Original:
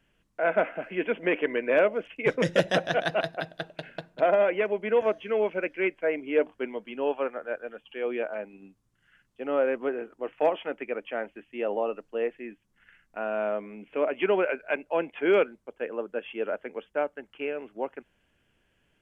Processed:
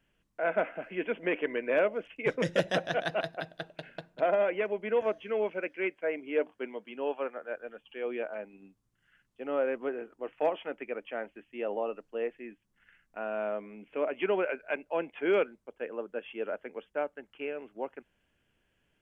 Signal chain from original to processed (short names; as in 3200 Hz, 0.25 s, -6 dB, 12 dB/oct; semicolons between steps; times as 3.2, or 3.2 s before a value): 5.53–7.57 HPF 170 Hz 6 dB/oct; gain -4.5 dB